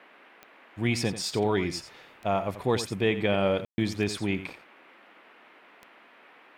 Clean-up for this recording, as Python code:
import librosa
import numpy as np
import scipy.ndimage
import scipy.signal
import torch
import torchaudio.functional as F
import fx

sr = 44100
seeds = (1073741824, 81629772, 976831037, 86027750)

y = fx.fix_declick_ar(x, sr, threshold=10.0)
y = fx.fix_ambience(y, sr, seeds[0], print_start_s=6.05, print_end_s=6.55, start_s=3.65, end_s=3.78)
y = fx.noise_reduce(y, sr, print_start_s=6.05, print_end_s=6.55, reduce_db=18.0)
y = fx.fix_echo_inverse(y, sr, delay_ms=87, level_db=-12.5)